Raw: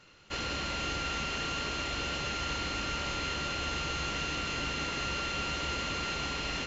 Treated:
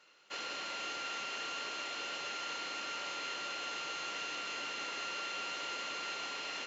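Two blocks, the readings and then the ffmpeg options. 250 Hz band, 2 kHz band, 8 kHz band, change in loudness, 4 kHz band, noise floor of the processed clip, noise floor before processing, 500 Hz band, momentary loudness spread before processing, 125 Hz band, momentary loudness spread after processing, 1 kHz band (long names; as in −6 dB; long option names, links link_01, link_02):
−14.0 dB, −5.0 dB, can't be measured, −5.5 dB, −5.0 dB, −44 dBFS, −38 dBFS, −7.5 dB, 1 LU, −27.5 dB, 1 LU, −5.0 dB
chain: -af "highpass=450,volume=-5dB"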